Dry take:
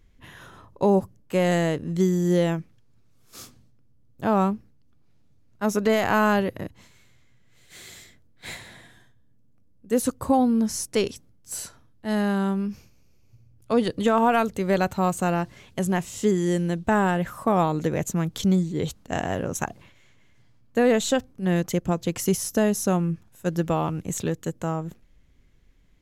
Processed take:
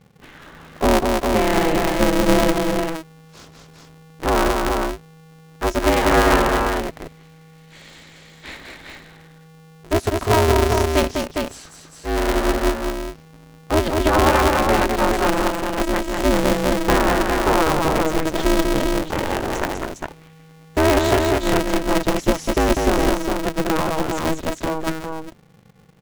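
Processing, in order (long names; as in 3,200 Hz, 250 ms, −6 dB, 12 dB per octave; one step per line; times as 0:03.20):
Bessel low-pass filter 3,700 Hz
multi-tap delay 198/406 ms −4/−4 dB
ring modulator with a square carrier 160 Hz
level +3 dB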